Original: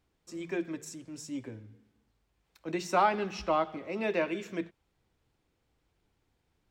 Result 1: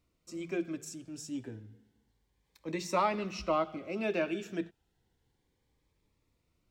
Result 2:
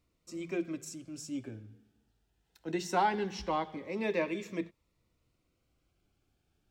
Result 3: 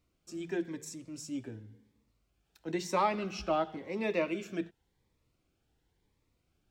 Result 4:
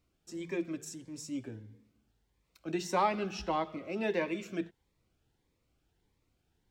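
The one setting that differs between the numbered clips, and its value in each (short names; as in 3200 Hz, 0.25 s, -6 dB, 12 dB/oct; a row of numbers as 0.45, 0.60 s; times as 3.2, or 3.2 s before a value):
cascading phaser, rate: 0.31, 0.2, 0.95, 1.6 Hz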